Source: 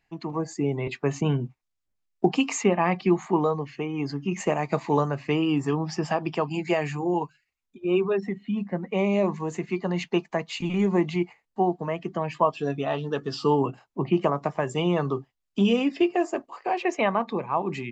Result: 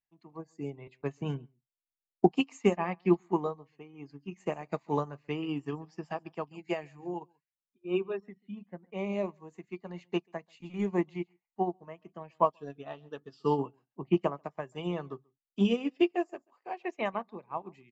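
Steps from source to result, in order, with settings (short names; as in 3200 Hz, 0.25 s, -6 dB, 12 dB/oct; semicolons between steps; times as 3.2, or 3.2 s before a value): echo 0.137 s -18 dB; upward expander 2.5:1, over -33 dBFS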